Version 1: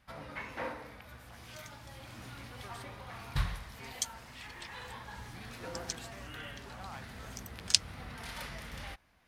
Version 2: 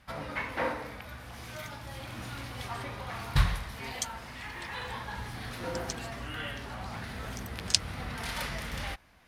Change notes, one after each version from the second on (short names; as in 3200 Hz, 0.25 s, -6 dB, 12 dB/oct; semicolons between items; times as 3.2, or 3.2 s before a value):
first sound +7.5 dB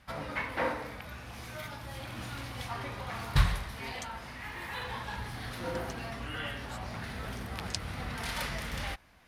speech: entry +0.70 s; second sound -12.0 dB